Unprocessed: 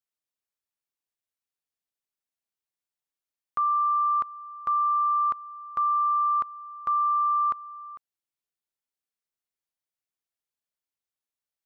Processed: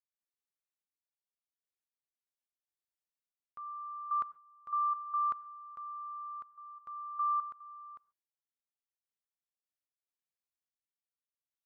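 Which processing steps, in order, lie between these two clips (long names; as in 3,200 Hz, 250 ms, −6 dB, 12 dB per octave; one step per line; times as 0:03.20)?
gate pattern ".xxx....x..x" 73 BPM −12 dB
on a send at −20.5 dB: convolution reverb, pre-delay 3 ms
on the sum: dynamic equaliser 1,400 Hz, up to +4 dB, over −42 dBFS, Q 4.3
level −8.5 dB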